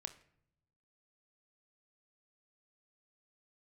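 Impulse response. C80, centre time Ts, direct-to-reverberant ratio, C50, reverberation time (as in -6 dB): 18.0 dB, 7 ms, 8.0 dB, 15.0 dB, 0.70 s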